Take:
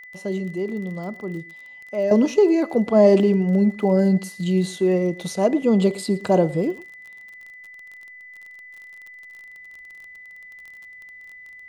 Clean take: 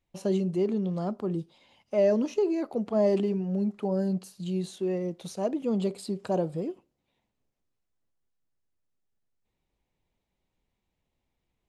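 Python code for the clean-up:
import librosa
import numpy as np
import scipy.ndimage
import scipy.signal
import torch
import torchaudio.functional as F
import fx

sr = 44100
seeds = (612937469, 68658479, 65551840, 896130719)

y = fx.fix_declick_ar(x, sr, threshold=6.5)
y = fx.notch(y, sr, hz=2000.0, q=30.0)
y = fx.fix_echo_inverse(y, sr, delay_ms=114, level_db=-20.5)
y = fx.fix_level(y, sr, at_s=2.11, step_db=-10.0)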